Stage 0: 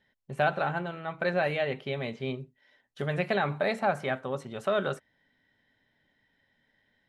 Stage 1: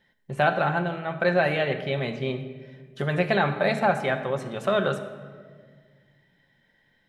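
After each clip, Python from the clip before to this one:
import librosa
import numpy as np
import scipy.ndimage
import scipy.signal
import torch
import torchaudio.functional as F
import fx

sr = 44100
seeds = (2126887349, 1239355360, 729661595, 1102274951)

y = fx.room_shoebox(x, sr, seeds[0], volume_m3=2100.0, walls='mixed', distance_m=0.84)
y = y * librosa.db_to_amplitude(4.5)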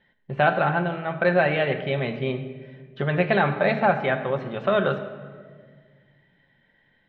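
y = scipy.signal.sosfilt(scipy.signal.butter(4, 3500.0, 'lowpass', fs=sr, output='sos'), x)
y = y * librosa.db_to_amplitude(2.0)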